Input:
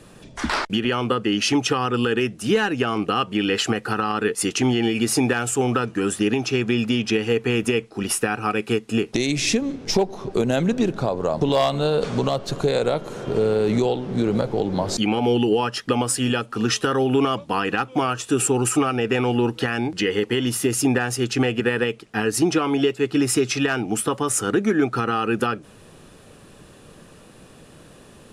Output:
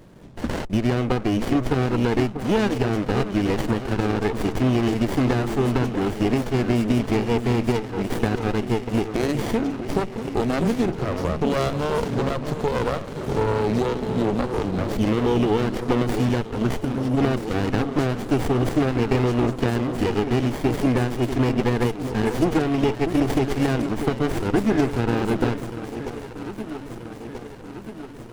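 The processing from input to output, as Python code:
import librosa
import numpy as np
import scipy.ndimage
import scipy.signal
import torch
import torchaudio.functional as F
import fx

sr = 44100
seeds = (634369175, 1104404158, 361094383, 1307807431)

y = fx.spec_box(x, sr, start_s=16.77, length_s=0.41, low_hz=350.0, high_hz=4500.0, gain_db=-13)
y = fx.echo_alternate(y, sr, ms=642, hz=990.0, feedback_pct=77, wet_db=-8.5)
y = fx.running_max(y, sr, window=33)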